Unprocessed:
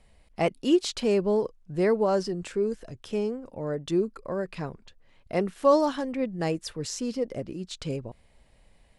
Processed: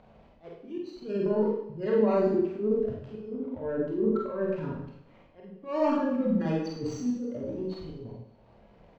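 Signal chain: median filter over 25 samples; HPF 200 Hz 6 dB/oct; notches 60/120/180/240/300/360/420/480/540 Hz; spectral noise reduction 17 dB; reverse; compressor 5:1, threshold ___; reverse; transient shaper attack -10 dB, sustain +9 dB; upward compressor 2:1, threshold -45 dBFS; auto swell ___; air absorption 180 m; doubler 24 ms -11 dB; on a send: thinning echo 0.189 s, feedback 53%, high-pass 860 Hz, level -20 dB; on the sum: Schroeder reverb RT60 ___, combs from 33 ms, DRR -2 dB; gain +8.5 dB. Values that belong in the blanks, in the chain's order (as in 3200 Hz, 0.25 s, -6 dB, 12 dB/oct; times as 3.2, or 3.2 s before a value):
-35 dBFS, 0.465 s, 0.69 s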